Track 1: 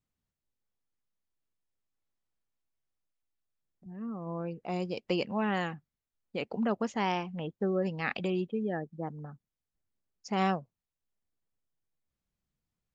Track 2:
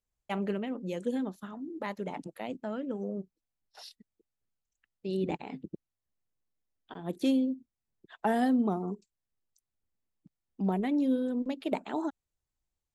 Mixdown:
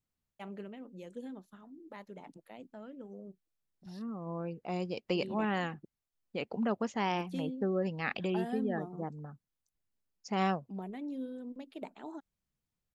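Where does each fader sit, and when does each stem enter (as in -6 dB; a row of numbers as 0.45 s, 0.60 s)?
-2.0 dB, -12.0 dB; 0.00 s, 0.10 s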